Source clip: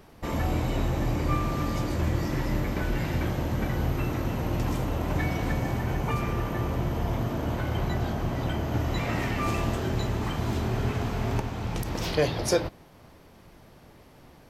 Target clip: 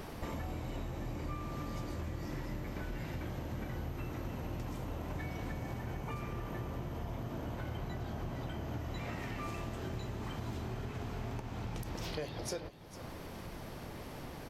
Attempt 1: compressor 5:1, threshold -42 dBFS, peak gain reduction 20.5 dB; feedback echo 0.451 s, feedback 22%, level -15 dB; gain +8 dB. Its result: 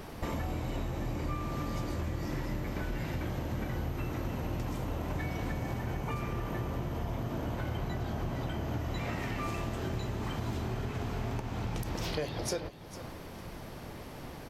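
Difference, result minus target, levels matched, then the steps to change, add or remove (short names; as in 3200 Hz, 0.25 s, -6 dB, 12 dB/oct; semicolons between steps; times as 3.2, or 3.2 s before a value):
compressor: peak gain reduction -5 dB
change: compressor 5:1, threshold -48.5 dBFS, peak gain reduction 26 dB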